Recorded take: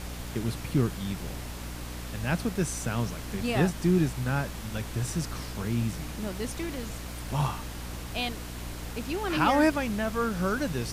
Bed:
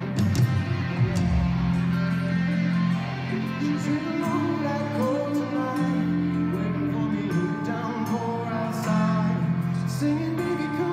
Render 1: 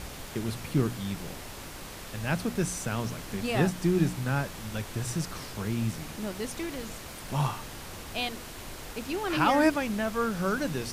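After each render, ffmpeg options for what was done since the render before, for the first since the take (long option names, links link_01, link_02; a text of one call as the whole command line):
ffmpeg -i in.wav -af "bandreject=frequency=60:width_type=h:width=4,bandreject=frequency=120:width_type=h:width=4,bandreject=frequency=180:width_type=h:width=4,bandreject=frequency=240:width_type=h:width=4,bandreject=frequency=300:width_type=h:width=4" out.wav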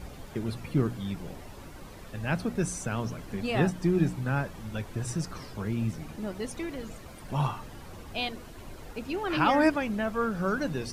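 ffmpeg -i in.wav -af "afftdn=noise_reduction=11:noise_floor=-42" out.wav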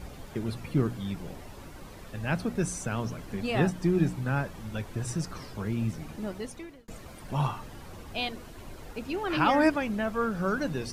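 ffmpeg -i in.wav -filter_complex "[0:a]asplit=2[link_01][link_02];[link_01]atrim=end=6.88,asetpts=PTS-STARTPTS,afade=type=out:start_time=6.29:duration=0.59[link_03];[link_02]atrim=start=6.88,asetpts=PTS-STARTPTS,afade=type=in:duration=0.004:curve=hsin[link_04];[link_03][link_04]concat=n=2:v=0:a=1" out.wav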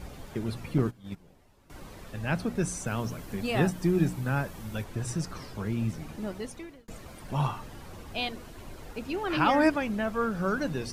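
ffmpeg -i in.wav -filter_complex "[0:a]asettb=1/sr,asplit=3[link_01][link_02][link_03];[link_01]atrim=end=0.784[link_04];[link_02]atrim=start=0.78:end=1.7,asetpts=PTS-STARTPTS,afade=type=in:duration=0.004:curve=qsin,afade=type=out:start_time=0.916:duration=0.004:curve=qsin,agate=range=-17dB:threshold=-32dB:ratio=16:release=100:detection=peak[link_05];[link_03]atrim=start=1.696[link_06];[link_04][link_05]acrossfade=duration=0.004:curve1=hsin:curve2=qsin[link_07];[link_07][link_06]acrossfade=duration=0.004:curve1=qsin:curve2=hsin,asettb=1/sr,asplit=3[link_08][link_09][link_10];[link_08]atrim=end=2.864[link_11];[link_09]atrim=start=2.86:end=4.84,asetpts=PTS-STARTPTS,afade=type=in:duration=0.004:curve=qsin,afade=type=out:start_time=1.976:duration=0.004:curve=qsin,highshelf=frequency=10000:gain=10.5[link_12];[link_10]atrim=start=4.836[link_13];[link_11][link_12]acrossfade=duration=0.004:curve1=hsin:curve2=qsin[link_14];[link_14][link_13]acrossfade=duration=0.004:curve1=qsin:curve2=hsin" out.wav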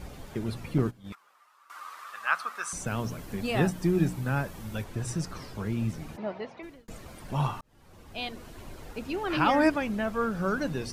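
ffmpeg -i in.wav -filter_complex "[0:a]asettb=1/sr,asplit=3[link_01][link_02][link_03];[link_01]atrim=end=1.124[link_04];[link_02]atrim=start=1.12:end=2.73,asetpts=PTS-STARTPTS,afade=type=in:duration=0.004:curve=qsin,afade=type=out:start_time=1.606:duration=0.004:curve=qsin,highpass=frequency=1200:width_type=q:width=7.5[link_05];[link_03]atrim=start=2.726[link_06];[link_04][link_05]acrossfade=duration=0.004:curve1=hsin:curve2=qsin[link_07];[link_07][link_06]acrossfade=duration=0.004:curve1=qsin:curve2=hsin,asplit=3[link_08][link_09][link_10];[link_08]afade=type=out:start_time=6.16:duration=0.02[link_11];[link_09]highpass=180,equalizer=frequency=280:width_type=q:width=4:gain=-8,equalizer=frequency=670:width_type=q:width=4:gain=9,equalizer=frequency=950:width_type=q:width=4:gain=6,equalizer=frequency=2200:width_type=q:width=4:gain=3,equalizer=frequency=3400:width_type=q:width=4:gain=-4,lowpass=frequency=4000:width=0.5412,lowpass=frequency=4000:width=1.3066,afade=type=in:start_time=6.16:duration=0.02,afade=type=out:start_time=6.62:duration=0.02[link_12];[link_10]afade=type=in:start_time=6.62:duration=0.02[link_13];[link_11][link_12][link_13]amix=inputs=3:normalize=0,asplit=2[link_14][link_15];[link_14]atrim=end=7.61,asetpts=PTS-STARTPTS,afade=type=out:start_time=7.606:duration=0.004:curve=hsin[link_16];[link_15]atrim=start=7.61,asetpts=PTS-STARTPTS,afade=type=in:duration=0.91[link_17];[link_16][link_17]concat=n=2:v=0:a=1" out.wav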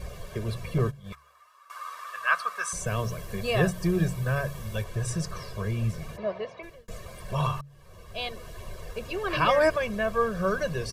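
ffmpeg -i in.wav -af "aecho=1:1:1.8:0.99,bandreject=frequency=70.62:width_type=h:width=4,bandreject=frequency=141.24:width_type=h:width=4" out.wav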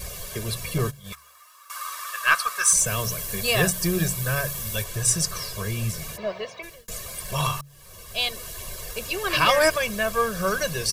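ffmpeg -i in.wav -af "aeval=exprs='0.316*(cos(1*acos(clip(val(0)/0.316,-1,1)))-cos(1*PI/2))+0.0141*(cos(4*acos(clip(val(0)/0.316,-1,1)))-cos(4*PI/2))':channel_layout=same,crystalizer=i=6:c=0" out.wav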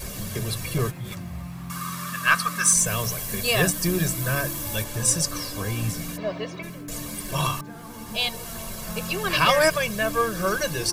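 ffmpeg -i in.wav -i bed.wav -filter_complex "[1:a]volume=-12.5dB[link_01];[0:a][link_01]amix=inputs=2:normalize=0" out.wav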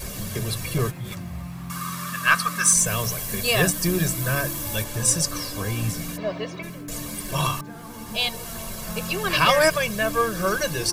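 ffmpeg -i in.wav -af "volume=1dB" out.wav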